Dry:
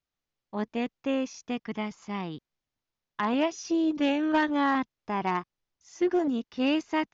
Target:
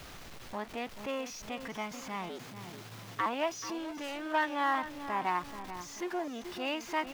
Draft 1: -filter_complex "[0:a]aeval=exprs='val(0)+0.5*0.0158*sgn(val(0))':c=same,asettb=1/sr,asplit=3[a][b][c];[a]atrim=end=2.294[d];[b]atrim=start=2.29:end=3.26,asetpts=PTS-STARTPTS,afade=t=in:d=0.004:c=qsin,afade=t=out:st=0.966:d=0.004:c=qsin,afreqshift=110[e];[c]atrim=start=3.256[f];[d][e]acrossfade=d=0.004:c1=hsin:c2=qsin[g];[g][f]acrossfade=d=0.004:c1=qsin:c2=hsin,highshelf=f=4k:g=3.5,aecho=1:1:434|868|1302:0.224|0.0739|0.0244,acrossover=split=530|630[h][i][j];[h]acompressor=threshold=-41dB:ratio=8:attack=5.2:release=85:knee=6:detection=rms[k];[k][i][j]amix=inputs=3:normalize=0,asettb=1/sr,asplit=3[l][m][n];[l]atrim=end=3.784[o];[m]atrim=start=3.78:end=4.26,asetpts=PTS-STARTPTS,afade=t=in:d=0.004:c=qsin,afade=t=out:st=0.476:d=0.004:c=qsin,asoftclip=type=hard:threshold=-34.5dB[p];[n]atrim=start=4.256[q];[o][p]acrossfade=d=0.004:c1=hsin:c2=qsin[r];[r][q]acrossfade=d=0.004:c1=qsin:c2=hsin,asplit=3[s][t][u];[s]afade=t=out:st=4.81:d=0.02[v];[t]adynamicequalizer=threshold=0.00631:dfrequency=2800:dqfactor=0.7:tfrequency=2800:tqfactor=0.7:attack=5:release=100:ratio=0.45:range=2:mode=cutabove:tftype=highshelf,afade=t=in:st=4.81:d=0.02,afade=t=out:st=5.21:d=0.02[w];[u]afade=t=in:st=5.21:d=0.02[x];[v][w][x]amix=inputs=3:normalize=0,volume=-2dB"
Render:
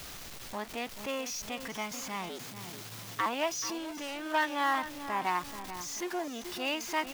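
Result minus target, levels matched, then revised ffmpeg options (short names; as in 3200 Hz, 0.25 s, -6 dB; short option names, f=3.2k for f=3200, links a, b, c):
8000 Hz band +6.5 dB
-filter_complex "[0:a]aeval=exprs='val(0)+0.5*0.0158*sgn(val(0))':c=same,asettb=1/sr,asplit=3[a][b][c];[a]atrim=end=2.294[d];[b]atrim=start=2.29:end=3.26,asetpts=PTS-STARTPTS,afade=t=in:d=0.004:c=qsin,afade=t=out:st=0.966:d=0.004:c=qsin,afreqshift=110[e];[c]atrim=start=3.256[f];[d][e]acrossfade=d=0.004:c1=hsin:c2=qsin[g];[g][f]acrossfade=d=0.004:c1=qsin:c2=hsin,highshelf=f=4k:g=-7.5,aecho=1:1:434|868|1302:0.224|0.0739|0.0244,acrossover=split=530|630[h][i][j];[h]acompressor=threshold=-41dB:ratio=8:attack=5.2:release=85:knee=6:detection=rms[k];[k][i][j]amix=inputs=3:normalize=0,asettb=1/sr,asplit=3[l][m][n];[l]atrim=end=3.784[o];[m]atrim=start=3.78:end=4.26,asetpts=PTS-STARTPTS,afade=t=in:d=0.004:c=qsin,afade=t=out:st=0.476:d=0.004:c=qsin,asoftclip=type=hard:threshold=-34.5dB[p];[n]atrim=start=4.256[q];[o][p]acrossfade=d=0.004:c1=hsin:c2=qsin[r];[r][q]acrossfade=d=0.004:c1=qsin:c2=hsin,asplit=3[s][t][u];[s]afade=t=out:st=4.81:d=0.02[v];[t]adynamicequalizer=threshold=0.00631:dfrequency=2800:dqfactor=0.7:tfrequency=2800:tqfactor=0.7:attack=5:release=100:ratio=0.45:range=2:mode=cutabove:tftype=highshelf,afade=t=in:st=4.81:d=0.02,afade=t=out:st=5.21:d=0.02[w];[u]afade=t=in:st=5.21:d=0.02[x];[v][w][x]amix=inputs=3:normalize=0,volume=-2dB"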